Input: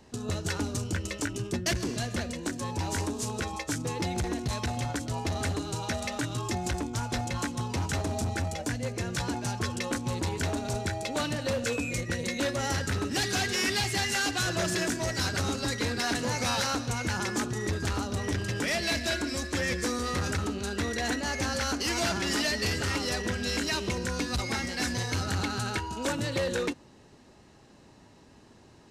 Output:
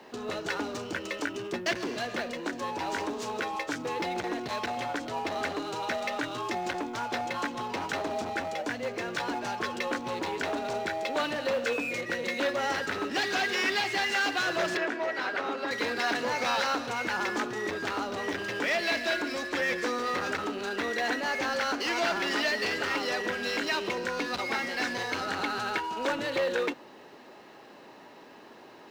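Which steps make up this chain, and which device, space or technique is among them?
phone line with mismatched companding (band-pass filter 390–3,300 Hz; mu-law and A-law mismatch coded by mu)
0:14.77–0:15.71: three-way crossover with the lows and the highs turned down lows −15 dB, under 230 Hz, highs −14 dB, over 3,100 Hz
level +2 dB

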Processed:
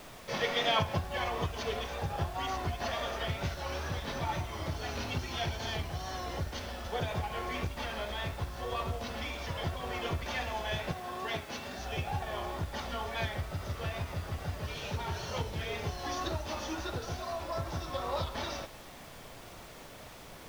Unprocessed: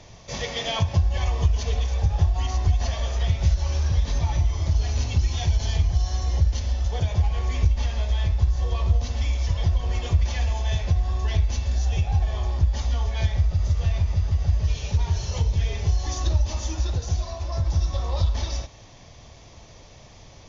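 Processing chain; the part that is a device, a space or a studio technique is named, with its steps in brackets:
horn gramophone (band-pass filter 210–3,500 Hz; parametric band 1,400 Hz +8 dB 0.34 octaves; tape wow and flutter; pink noise bed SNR 16 dB)
0:10.91–0:11.79: high-pass filter 140 Hz 12 dB per octave

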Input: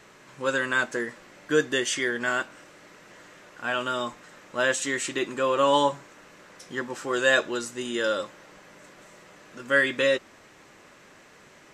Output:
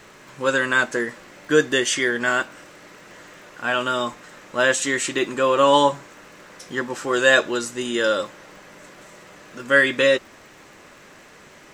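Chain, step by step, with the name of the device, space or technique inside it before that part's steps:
vinyl LP (surface crackle 60 per second −48 dBFS; pink noise bed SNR 43 dB)
level +5.5 dB

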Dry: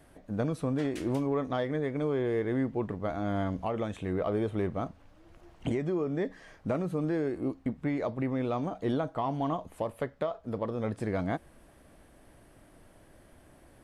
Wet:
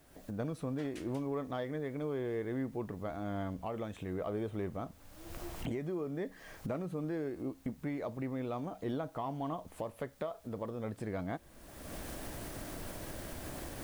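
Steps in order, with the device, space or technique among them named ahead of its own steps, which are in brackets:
cheap recorder with automatic gain (white noise bed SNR 32 dB; camcorder AGC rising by 34 dB per second)
level −7 dB

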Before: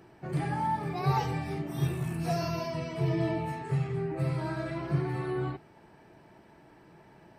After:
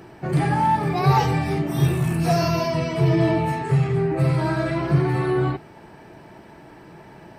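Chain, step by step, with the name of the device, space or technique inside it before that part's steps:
parallel distortion (in parallel at −8 dB: hard clipping −30 dBFS, distortion −9 dB)
on the sum: level +8.5 dB

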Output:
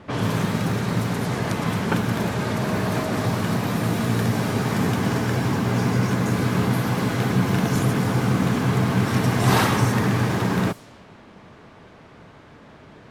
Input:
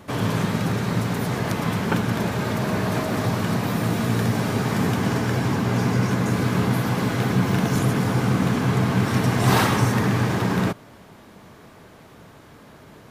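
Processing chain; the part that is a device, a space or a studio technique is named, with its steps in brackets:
cassette deck with a dynamic noise filter (white noise bed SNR 27 dB; low-pass that shuts in the quiet parts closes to 2,300 Hz, open at −19 dBFS)

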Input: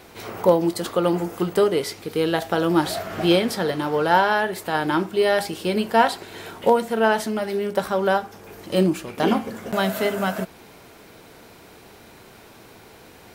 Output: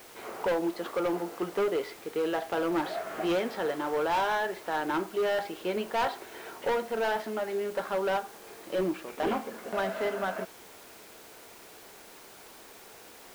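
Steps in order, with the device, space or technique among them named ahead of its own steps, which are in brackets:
aircraft radio (band-pass filter 340–2,600 Hz; hard clipping −19.5 dBFS, distortion −8 dB; white noise bed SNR 18 dB)
high-shelf EQ 5,500 Hz −4.5 dB
level −4.5 dB

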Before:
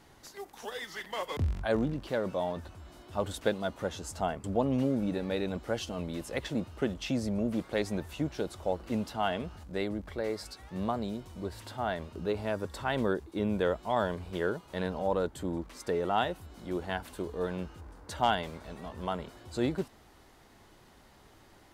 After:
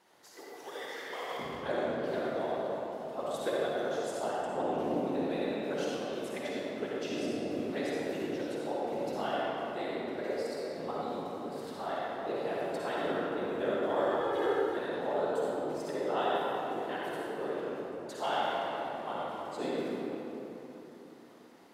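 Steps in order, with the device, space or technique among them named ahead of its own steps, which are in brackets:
whispering ghost (random phases in short frames; high-pass filter 350 Hz 12 dB per octave; convolution reverb RT60 3.6 s, pre-delay 47 ms, DRR −6 dB)
0:14.20–0:14.77: comb filter 2.4 ms, depth 78%
low-shelf EQ 320 Hz +4 dB
level −7.5 dB

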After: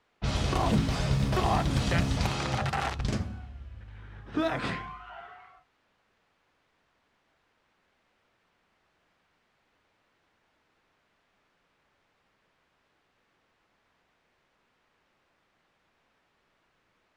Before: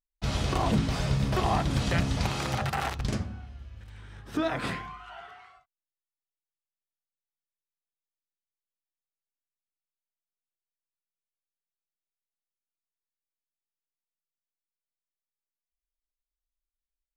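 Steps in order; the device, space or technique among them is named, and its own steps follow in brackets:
cassette deck with a dynamic noise filter (white noise bed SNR 28 dB; low-pass that shuts in the quiet parts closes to 2,000 Hz, open at −22.5 dBFS)

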